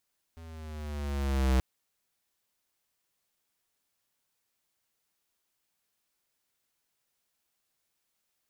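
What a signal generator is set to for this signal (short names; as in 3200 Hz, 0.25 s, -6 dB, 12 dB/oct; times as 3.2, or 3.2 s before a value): gliding synth tone square, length 1.23 s, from 82.9 Hz, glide -4.5 st, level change +24 dB, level -23 dB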